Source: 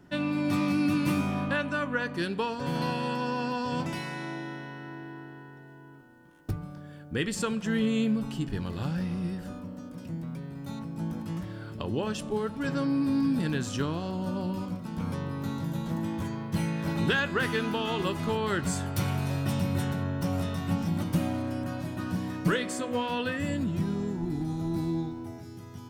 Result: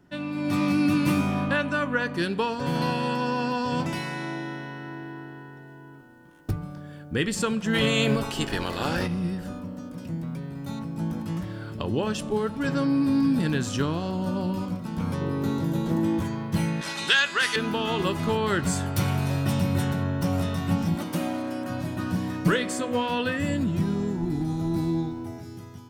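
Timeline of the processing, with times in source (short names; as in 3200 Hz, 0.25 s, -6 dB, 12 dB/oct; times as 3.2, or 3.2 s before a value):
7.73–9.06 spectral limiter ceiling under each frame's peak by 19 dB
15.21–16.2 bell 380 Hz +9.5 dB
16.81–17.56 weighting filter ITU-R 468
20.95–21.7 HPF 250 Hz
whole clip: AGC gain up to 7.5 dB; gain -3.5 dB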